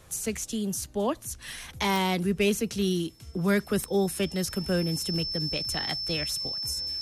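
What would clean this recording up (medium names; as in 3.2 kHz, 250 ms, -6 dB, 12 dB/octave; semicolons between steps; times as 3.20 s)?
de-click; band-stop 5.3 kHz, Q 30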